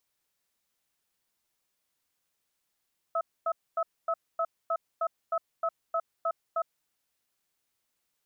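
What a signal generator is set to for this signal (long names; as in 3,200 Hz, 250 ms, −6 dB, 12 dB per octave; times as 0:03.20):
tone pair in a cadence 664 Hz, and 1,290 Hz, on 0.06 s, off 0.25 s, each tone −28 dBFS 3.70 s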